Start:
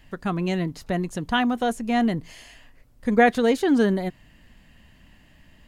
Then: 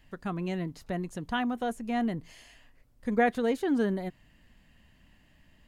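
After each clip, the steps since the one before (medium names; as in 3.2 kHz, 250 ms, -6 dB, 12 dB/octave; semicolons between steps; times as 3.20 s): dynamic bell 5.1 kHz, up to -5 dB, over -43 dBFS, Q 0.77; trim -7.5 dB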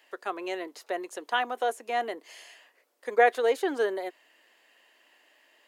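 steep high-pass 370 Hz 36 dB/octave; trim +5 dB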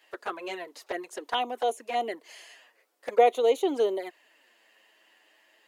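touch-sensitive flanger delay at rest 10 ms, full sweep at -25.5 dBFS; trim +3 dB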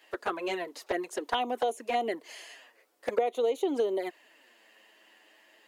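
bass shelf 270 Hz +8 dB; compression 10:1, threshold -26 dBFS, peak gain reduction 13.5 dB; trim +2 dB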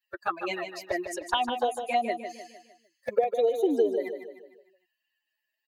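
expander on every frequency bin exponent 2; on a send: feedback delay 152 ms, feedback 45%, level -8.5 dB; on the sum: trim +6 dB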